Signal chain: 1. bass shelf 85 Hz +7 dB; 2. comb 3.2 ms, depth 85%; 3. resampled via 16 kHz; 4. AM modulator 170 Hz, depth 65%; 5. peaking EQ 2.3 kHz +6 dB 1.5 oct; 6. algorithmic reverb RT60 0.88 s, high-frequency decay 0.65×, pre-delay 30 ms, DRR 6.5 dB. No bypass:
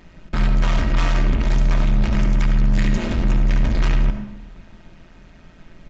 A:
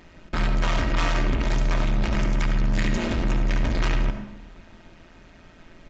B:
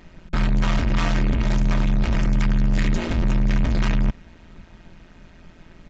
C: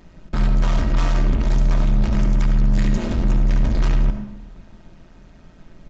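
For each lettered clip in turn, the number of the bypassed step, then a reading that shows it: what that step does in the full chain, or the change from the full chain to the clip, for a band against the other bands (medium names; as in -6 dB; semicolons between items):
1, 125 Hz band -5.5 dB; 6, loudness change -2.0 LU; 5, 2 kHz band -4.5 dB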